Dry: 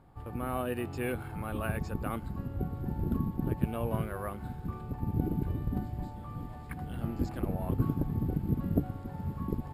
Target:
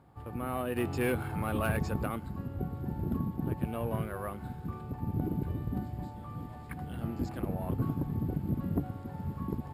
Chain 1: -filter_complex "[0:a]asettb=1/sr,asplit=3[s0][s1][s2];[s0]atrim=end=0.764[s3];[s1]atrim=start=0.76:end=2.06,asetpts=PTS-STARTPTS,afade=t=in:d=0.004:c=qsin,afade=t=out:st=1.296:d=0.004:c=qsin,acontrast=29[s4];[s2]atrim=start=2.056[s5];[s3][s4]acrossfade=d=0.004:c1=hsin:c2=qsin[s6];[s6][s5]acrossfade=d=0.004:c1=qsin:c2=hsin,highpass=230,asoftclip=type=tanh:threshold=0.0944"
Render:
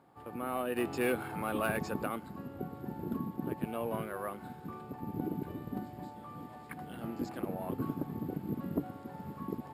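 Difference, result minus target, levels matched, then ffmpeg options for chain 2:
125 Hz band -6.5 dB
-filter_complex "[0:a]asettb=1/sr,asplit=3[s0][s1][s2];[s0]atrim=end=0.764[s3];[s1]atrim=start=0.76:end=2.06,asetpts=PTS-STARTPTS,afade=t=in:d=0.004:c=qsin,afade=t=out:st=1.296:d=0.004:c=qsin,acontrast=29[s4];[s2]atrim=start=2.056[s5];[s3][s4]acrossfade=d=0.004:c1=hsin:c2=qsin[s6];[s6][s5]acrossfade=d=0.004:c1=qsin:c2=hsin,highpass=65,asoftclip=type=tanh:threshold=0.0944"

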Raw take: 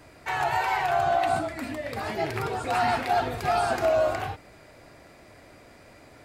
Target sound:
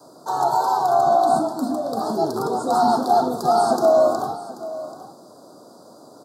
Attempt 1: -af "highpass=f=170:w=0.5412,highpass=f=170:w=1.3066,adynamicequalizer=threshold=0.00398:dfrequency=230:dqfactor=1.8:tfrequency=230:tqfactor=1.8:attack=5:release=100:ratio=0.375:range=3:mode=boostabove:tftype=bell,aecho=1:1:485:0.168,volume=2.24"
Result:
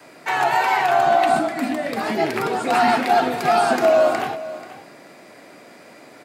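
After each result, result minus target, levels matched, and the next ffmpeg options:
2 kHz band +16.0 dB; echo 299 ms early
-af "highpass=f=170:w=0.5412,highpass=f=170:w=1.3066,adynamicequalizer=threshold=0.00398:dfrequency=230:dqfactor=1.8:tfrequency=230:tqfactor=1.8:attack=5:release=100:ratio=0.375:range=3:mode=boostabove:tftype=bell,asuperstop=centerf=2300:order=8:qfactor=0.79,aecho=1:1:485:0.168,volume=2.24"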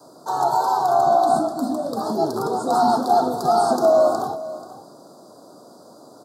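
echo 299 ms early
-af "highpass=f=170:w=0.5412,highpass=f=170:w=1.3066,adynamicequalizer=threshold=0.00398:dfrequency=230:dqfactor=1.8:tfrequency=230:tqfactor=1.8:attack=5:release=100:ratio=0.375:range=3:mode=boostabove:tftype=bell,asuperstop=centerf=2300:order=8:qfactor=0.79,aecho=1:1:784:0.168,volume=2.24"

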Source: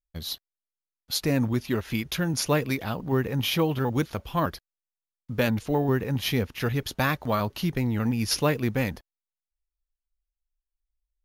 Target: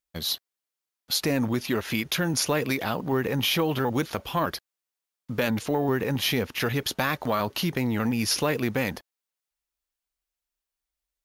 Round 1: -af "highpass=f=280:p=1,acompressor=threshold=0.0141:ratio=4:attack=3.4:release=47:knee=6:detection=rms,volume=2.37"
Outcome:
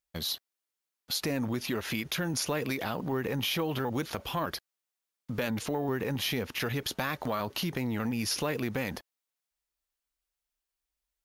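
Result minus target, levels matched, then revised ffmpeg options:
compression: peak gain reduction +6.5 dB
-af "highpass=f=280:p=1,acompressor=threshold=0.0376:ratio=4:attack=3.4:release=47:knee=6:detection=rms,volume=2.37"

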